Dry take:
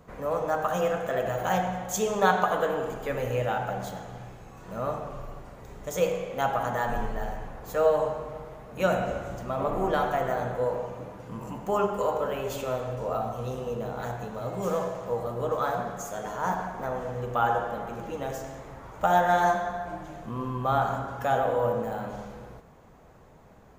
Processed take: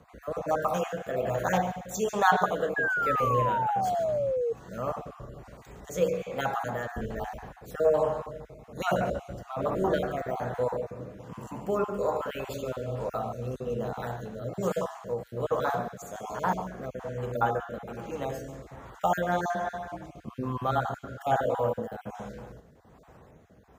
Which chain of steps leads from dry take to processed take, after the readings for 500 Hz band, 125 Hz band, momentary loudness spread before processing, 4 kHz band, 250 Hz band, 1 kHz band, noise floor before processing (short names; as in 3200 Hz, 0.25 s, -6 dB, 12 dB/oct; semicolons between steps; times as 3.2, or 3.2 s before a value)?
-1.5 dB, -1.0 dB, 16 LU, -2.5 dB, -1.0 dB, -2.0 dB, -52 dBFS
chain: random spectral dropouts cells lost 24%; HPF 43 Hz 24 dB/oct; rotary speaker horn 1.2 Hz; painted sound fall, 2.76–4.53, 450–1700 Hz -29 dBFS; on a send: thin delay 0.143 s, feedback 34%, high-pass 3900 Hz, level -13.5 dB; on the sum: gain +1.5 dB